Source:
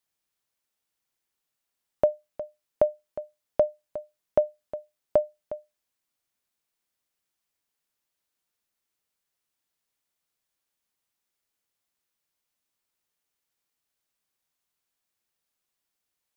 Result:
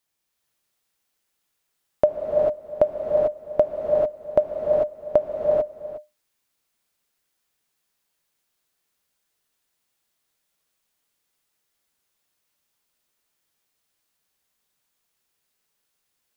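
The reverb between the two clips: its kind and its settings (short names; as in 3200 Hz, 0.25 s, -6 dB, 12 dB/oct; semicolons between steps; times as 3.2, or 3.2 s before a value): non-linear reverb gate 0.47 s rising, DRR -1 dB; gain +4 dB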